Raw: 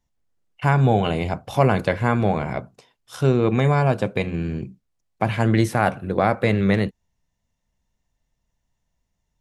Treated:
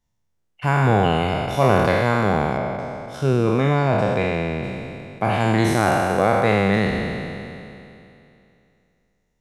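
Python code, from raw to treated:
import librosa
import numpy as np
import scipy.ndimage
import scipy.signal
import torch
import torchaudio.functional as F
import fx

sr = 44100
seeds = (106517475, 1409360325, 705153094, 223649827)

y = fx.spec_trails(x, sr, decay_s=2.7)
y = fx.high_shelf(y, sr, hz=5800.0, db=-9.5, at=(2.57, 4.64))
y = F.gain(torch.from_numpy(y), -2.5).numpy()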